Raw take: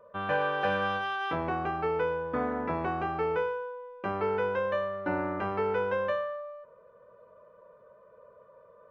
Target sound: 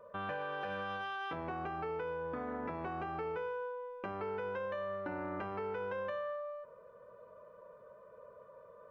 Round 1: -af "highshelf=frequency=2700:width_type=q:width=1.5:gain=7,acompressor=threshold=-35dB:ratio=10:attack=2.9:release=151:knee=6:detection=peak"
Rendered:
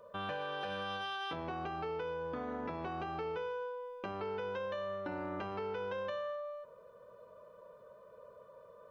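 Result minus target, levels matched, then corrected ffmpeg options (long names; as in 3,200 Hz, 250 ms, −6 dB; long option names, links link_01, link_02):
4,000 Hz band +7.5 dB
-af "acompressor=threshold=-35dB:ratio=10:attack=2.9:release=151:knee=6:detection=peak"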